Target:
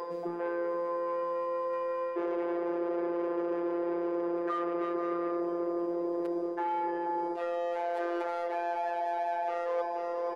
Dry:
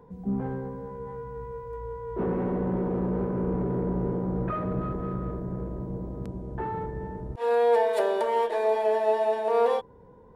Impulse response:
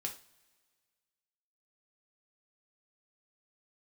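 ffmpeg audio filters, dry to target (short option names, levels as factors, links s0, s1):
-filter_complex "[0:a]asplit=2[s0][s1];[s1]highpass=f=720:p=1,volume=15.8,asoftclip=type=tanh:threshold=0.237[s2];[s0][s2]amix=inputs=2:normalize=0,lowpass=f=2300:p=1,volume=0.501,acrossover=split=110|2200[s3][s4][s5];[s3]acompressor=threshold=0.00631:ratio=4[s6];[s4]acompressor=threshold=0.0794:ratio=4[s7];[s5]acompressor=threshold=0.00316:ratio=4[s8];[s6][s7][s8]amix=inputs=3:normalize=0,acrossover=split=140|2600[s9][s10][s11];[s11]aeval=exprs='clip(val(0),-1,0.00335)':c=same[s12];[s9][s10][s12]amix=inputs=3:normalize=0,tiltshelf=f=640:g=-3,aeval=exprs='val(0)+0.00224*sin(2*PI*4900*n/s)':c=same,afftfilt=real='hypot(re,im)*cos(PI*b)':imag='0':win_size=1024:overlap=0.75,lowshelf=f=260:t=q:w=3:g=-12,aecho=1:1:482|964|1446|1928|2410:0.224|0.114|0.0582|0.0297|0.0151,areverse,acompressor=threshold=0.0178:ratio=5,areverse,volume=1.68"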